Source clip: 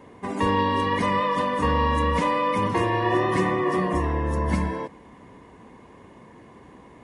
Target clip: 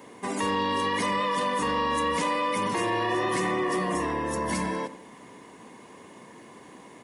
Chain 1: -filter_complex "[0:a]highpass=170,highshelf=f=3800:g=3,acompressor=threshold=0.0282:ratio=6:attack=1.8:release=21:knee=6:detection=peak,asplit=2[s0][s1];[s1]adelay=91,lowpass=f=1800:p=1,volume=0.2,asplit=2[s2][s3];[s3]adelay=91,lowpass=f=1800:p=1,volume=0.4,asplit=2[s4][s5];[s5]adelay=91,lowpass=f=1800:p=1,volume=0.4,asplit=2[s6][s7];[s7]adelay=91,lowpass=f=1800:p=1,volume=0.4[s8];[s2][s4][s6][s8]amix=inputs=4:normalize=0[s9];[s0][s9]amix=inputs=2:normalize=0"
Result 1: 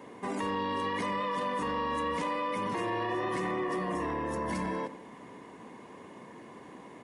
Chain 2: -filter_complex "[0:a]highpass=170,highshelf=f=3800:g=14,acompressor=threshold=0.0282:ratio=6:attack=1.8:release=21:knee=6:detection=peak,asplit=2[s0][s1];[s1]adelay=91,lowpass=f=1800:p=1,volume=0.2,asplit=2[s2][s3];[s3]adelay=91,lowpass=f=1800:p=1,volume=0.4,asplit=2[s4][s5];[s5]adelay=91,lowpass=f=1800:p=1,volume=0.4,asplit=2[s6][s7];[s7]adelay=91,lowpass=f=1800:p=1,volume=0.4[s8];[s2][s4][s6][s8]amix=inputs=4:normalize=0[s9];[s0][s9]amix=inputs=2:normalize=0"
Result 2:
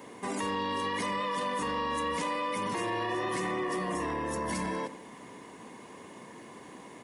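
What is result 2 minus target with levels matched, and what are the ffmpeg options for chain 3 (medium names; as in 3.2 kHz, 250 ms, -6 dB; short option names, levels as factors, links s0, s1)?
compression: peak gain reduction +6 dB
-filter_complex "[0:a]highpass=170,highshelf=f=3800:g=14,acompressor=threshold=0.0631:ratio=6:attack=1.8:release=21:knee=6:detection=peak,asplit=2[s0][s1];[s1]adelay=91,lowpass=f=1800:p=1,volume=0.2,asplit=2[s2][s3];[s3]adelay=91,lowpass=f=1800:p=1,volume=0.4,asplit=2[s4][s5];[s5]adelay=91,lowpass=f=1800:p=1,volume=0.4,asplit=2[s6][s7];[s7]adelay=91,lowpass=f=1800:p=1,volume=0.4[s8];[s2][s4][s6][s8]amix=inputs=4:normalize=0[s9];[s0][s9]amix=inputs=2:normalize=0"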